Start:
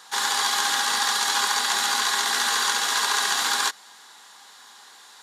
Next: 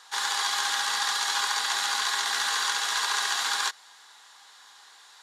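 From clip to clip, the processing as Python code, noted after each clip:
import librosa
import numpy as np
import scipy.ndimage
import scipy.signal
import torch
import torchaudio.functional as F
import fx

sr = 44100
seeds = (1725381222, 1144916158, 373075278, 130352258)

y = fx.weighting(x, sr, curve='A')
y = y * librosa.db_to_amplitude(-4.5)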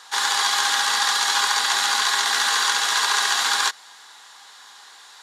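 y = fx.low_shelf(x, sr, hz=240.0, db=4.5)
y = y * librosa.db_to_amplitude(6.5)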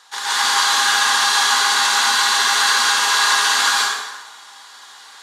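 y = fx.rev_plate(x, sr, seeds[0], rt60_s=1.2, hf_ratio=0.8, predelay_ms=115, drr_db=-8.5)
y = y * librosa.db_to_amplitude(-4.5)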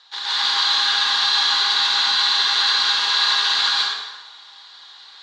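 y = fx.lowpass_res(x, sr, hz=4000.0, q=3.9)
y = y * librosa.db_to_amplitude(-8.0)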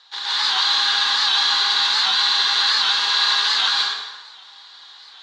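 y = fx.record_warp(x, sr, rpm=78.0, depth_cents=100.0)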